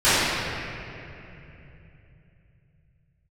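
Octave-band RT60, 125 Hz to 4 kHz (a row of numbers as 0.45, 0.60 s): 5.9, 4.2, 3.3, 2.6, 3.0, 2.0 s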